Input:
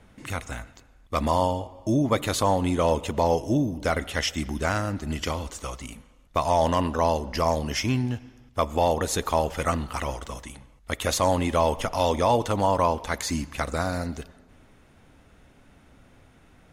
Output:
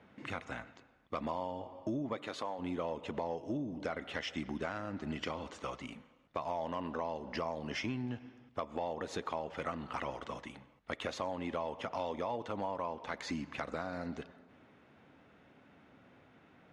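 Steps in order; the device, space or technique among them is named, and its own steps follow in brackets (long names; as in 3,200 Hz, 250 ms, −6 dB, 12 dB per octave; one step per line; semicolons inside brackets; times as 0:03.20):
AM radio (band-pass filter 160–3,200 Hz; downward compressor 6 to 1, threshold −30 dBFS, peak gain reduction 13 dB; soft clipping −19 dBFS, distortion −23 dB)
0:02.15–0:02.58: high-pass filter 180 Hz → 570 Hz 6 dB per octave
level −3.5 dB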